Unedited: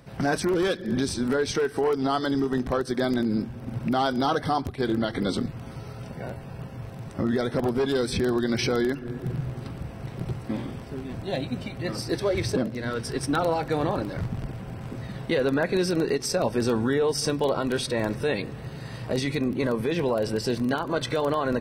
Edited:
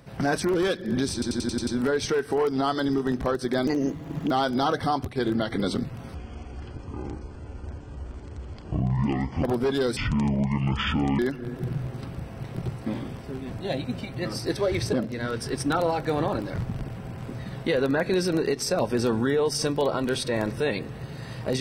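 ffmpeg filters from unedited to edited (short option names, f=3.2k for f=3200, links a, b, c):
-filter_complex "[0:a]asplit=13[a][b][c][d][e][f][g][h][i][j][k][l][m];[a]atrim=end=1.222[n];[b]atrim=start=1.128:end=1.222[o];[c]atrim=start=1.128:end=1.222[p];[d]atrim=start=1.128:end=1.222[q];[e]atrim=start=1.128:end=1.222[r];[f]atrim=start=1.128:end=1.222[s];[g]atrim=start=1.128:end=3.134[t];[h]atrim=start=3.13:end=3.93,asetpts=PTS-STARTPTS,asetrate=55566,aresample=44100[u];[i]atrim=start=3.926:end=5.774[v];[j]atrim=start=5.77:end=7.58,asetpts=PTS-STARTPTS,asetrate=24255,aresample=44100,atrim=end_sample=145129,asetpts=PTS-STARTPTS[w];[k]atrim=start=7.576:end=8.114[x];[l]atrim=start=8.11:end=8.82,asetpts=PTS-STARTPTS,asetrate=25578,aresample=44100,atrim=end_sample=53984,asetpts=PTS-STARTPTS[y];[m]atrim=start=8.816[z];[n][o]acrossfade=d=0.004:c1=hsin:c2=hsin[aa];[aa][p]acrossfade=d=0.004:c1=hsin:c2=hsin[ab];[ab][q]acrossfade=d=0.004:c1=hsin:c2=hsin[ac];[ac][r]acrossfade=d=0.004:c1=hsin:c2=hsin[ad];[ad][s]acrossfade=d=0.004:c1=hsin:c2=hsin[ae];[ae][t]acrossfade=d=0.004:c1=hsin:c2=hsin[af];[af][u]acrossfade=d=0.004:c1=hsin:c2=hsin[ag];[ag][v]acrossfade=d=0.004:c1=hsin:c2=hsin[ah];[ah][w]acrossfade=d=0.004:c1=hsin:c2=hsin[ai];[ai][x]acrossfade=d=0.004:c1=hsin:c2=hsin[aj];[aj][y]acrossfade=d=0.004:c1=hsin:c2=hsin[ak];[ak][z]acrossfade=d=0.004:c1=hsin:c2=hsin"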